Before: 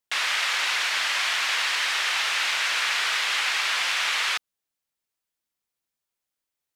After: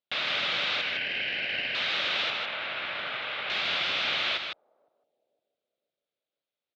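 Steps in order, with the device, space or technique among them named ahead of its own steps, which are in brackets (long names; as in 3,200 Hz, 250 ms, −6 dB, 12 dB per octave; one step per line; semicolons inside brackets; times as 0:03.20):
0:00.81–0:01.75: Chebyshev band-pass filter 1,500–3,100 Hz, order 5
0:02.30–0:03.50: high-frequency loss of the air 420 metres
analogue delay pedal into a guitar amplifier (bucket-brigade delay 508 ms, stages 2,048, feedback 40%, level −22 dB; tube saturation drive 20 dB, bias 0.6; loudspeaker in its box 110–3,900 Hz, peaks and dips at 590 Hz +8 dB, 990 Hz −7 dB, 1,800 Hz −6 dB, 3,700 Hz +5 dB)
single-tap delay 155 ms −5.5 dB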